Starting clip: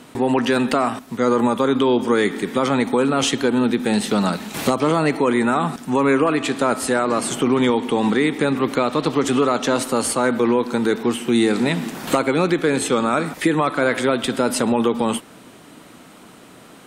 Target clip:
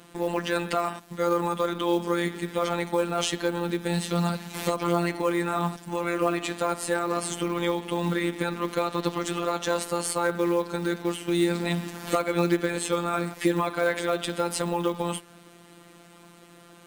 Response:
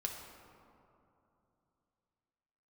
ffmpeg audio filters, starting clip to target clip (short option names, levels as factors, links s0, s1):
-af "afftfilt=real='hypot(re,im)*cos(PI*b)':imag='0':win_size=1024:overlap=0.75,acrusher=bits=6:mode=log:mix=0:aa=0.000001,volume=0.668"